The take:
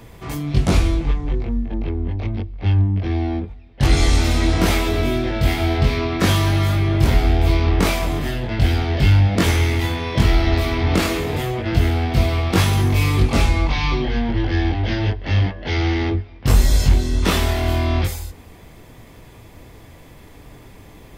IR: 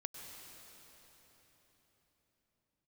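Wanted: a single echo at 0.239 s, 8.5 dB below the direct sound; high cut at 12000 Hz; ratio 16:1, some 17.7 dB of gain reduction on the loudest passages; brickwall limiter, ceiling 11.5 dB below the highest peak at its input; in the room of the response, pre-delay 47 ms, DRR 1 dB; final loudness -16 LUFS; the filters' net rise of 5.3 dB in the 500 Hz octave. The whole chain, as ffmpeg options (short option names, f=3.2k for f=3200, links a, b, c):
-filter_complex "[0:a]lowpass=12k,equalizer=f=500:t=o:g=7.5,acompressor=threshold=-27dB:ratio=16,alimiter=level_in=4dB:limit=-24dB:level=0:latency=1,volume=-4dB,aecho=1:1:239:0.376,asplit=2[a][b];[1:a]atrim=start_sample=2205,adelay=47[c];[b][c]afir=irnorm=-1:irlink=0,volume=1dB[d];[a][d]amix=inputs=2:normalize=0,volume=18dB"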